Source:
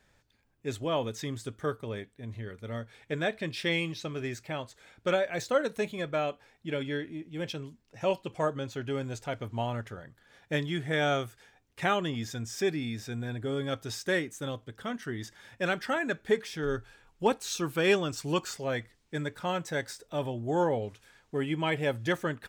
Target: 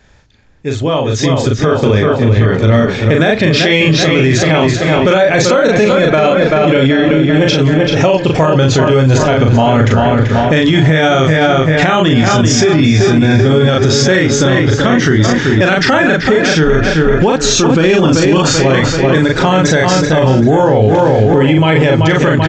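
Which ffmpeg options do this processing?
-filter_complex "[0:a]asplit=2[a][b];[b]adelay=38,volume=-3dB[c];[a][c]amix=inputs=2:normalize=0,asplit=2[d][e];[e]adelay=385,lowpass=f=3.8k:p=1,volume=-8dB,asplit=2[f][g];[g]adelay=385,lowpass=f=3.8k:p=1,volume=0.53,asplit=2[h][i];[i]adelay=385,lowpass=f=3.8k:p=1,volume=0.53,asplit=2[j][k];[k]adelay=385,lowpass=f=3.8k:p=1,volume=0.53,asplit=2[l][m];[m]adelay=385,lowpass=f=3.8k:p=1,volume=0.53,asplit=2[n][o];[o]adelay=385,lowpass=f=3.8k:p=1,volume=0.53[p];[f][h][j][l][n][p]amix=inputs=6:normalize=0[q];[d][q]amix=inputs=2:normalize=0,aresample=16000,aresample=44100,acompressor=threshold=-30dB:ratio=6,asettb=1/sr,asplit=3[r][s][t];[r]atrim=end=17.674[u];[s]atrim=start=17.67:end=18.38,asetpts=PTS-STARTPTS,afade=t=in:d=0.004:c=qsin,afade=t=out:st=0.706:d=0.004:c=qsin,equalizer=f=260:w=1.3:g=8.5[v];[t]atrim=start=18.376[w];[u][v]acrossfade=d=0.004:c1=hsin:c2=qsin[x];[x][w]acrossfade=d=0.004:c1=qsin:c2=hsin,dynaudnorm=f=680:g=5:m=15.5dB,lowshelf=f=140:g=7,alimiter=level_in=16dB:limit=-1dB:release=50:level=0:latency=1,volume=-1dB"

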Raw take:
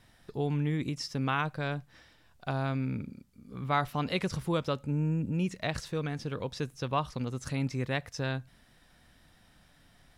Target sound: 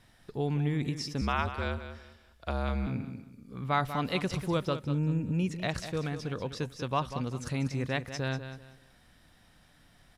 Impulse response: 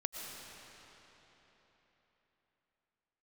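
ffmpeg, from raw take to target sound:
-filter_complex "[0:a]aresample=32000,aresample=44100,aecho=1:1:192|384|576:0.299|0.0806|0.0218,asettb=1/sr,asplit=3[a][b][c];[a]atrim=end=1.214[d];[b]atrim=start=1.21:end=2.87,asetpts=PTS-STARTPTS,afade=t=in:d=0.004:c=qsin,afade=t=out:st=1.656:d=0.004:c=qsin,afreqshift=-62[e];[c]atrim=start=2.866[f];[d][e]acrossfade=d=0.004:c1=hsin:c2=qsin[g];[g][f]acrossfade=d=0.004:c1=qsin:c2=hsin"

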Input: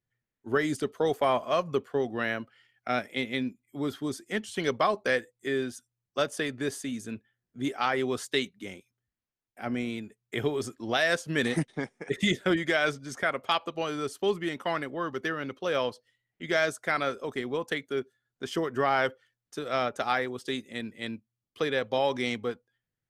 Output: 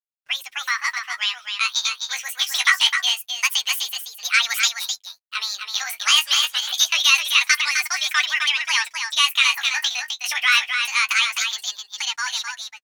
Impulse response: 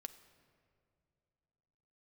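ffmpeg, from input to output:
-filter_complex "[0:a]highpass=f=850:w=0.5412,highpass=f=850:w=1.3066,agate=range=-14dB:threshold=-58dB:ratio=16:detection=peak,equalizer=f=1.4k:t=o:w=2.7:g=4.5,dynaudnorm=f=610:g=9:m=12.5dB,asplit=2[a][b];[b]alimiter=limit=-14dB:level=0:latency=1:release=141,volume=0dB[c];[a][c]amix=inputs=2:normalize=0,acrusher=bits=8:mix=0:aa=0.5,asetrate=79380,aresample=44100,flanger=delay=6.5:depth=9.8:regen=20:speed=0.25:shape=sinusoidal,aecho=1:1:258:0.501"

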